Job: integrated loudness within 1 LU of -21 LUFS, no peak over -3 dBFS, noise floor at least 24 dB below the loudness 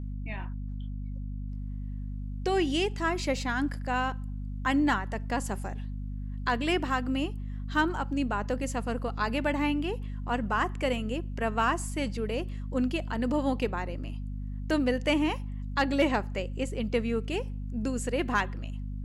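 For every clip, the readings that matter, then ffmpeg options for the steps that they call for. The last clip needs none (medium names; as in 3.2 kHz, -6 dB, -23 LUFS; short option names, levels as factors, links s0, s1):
hum 50 Hz; highest harmonic 250 Hz; hum level -33 dBFS; loudness -30.5 LUFS; peak level -14.5 dBFS; loudness target -21.0 LUFS
-> -af "bandreject=f=50:t=h:w=6,bandreject=f=100:t=h:w=6,bandreject=f=150:t=h:w=6,bandreject=f=200:t=h:w=6,bandreject=f=250:t=h:w=6"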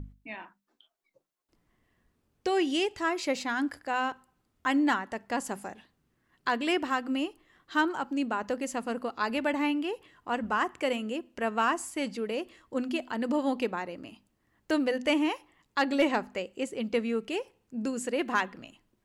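hum not found; loudness -30.5 LUFS; peak level -14.5 dBFS; loudness target -21.0 LUFS
-> -af "volume=2.99"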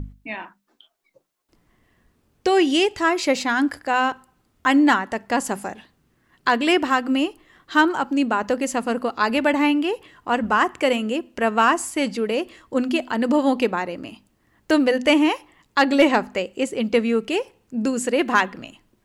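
loudness -21.0 LUFS; peak level -5.0 dBFS; noise floor -66 dBFS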